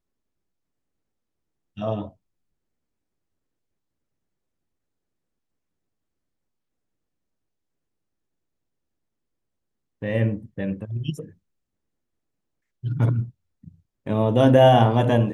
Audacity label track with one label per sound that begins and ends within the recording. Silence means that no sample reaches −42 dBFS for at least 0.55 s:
1.770000	2.100000	sound
10.020000	11.310000	sound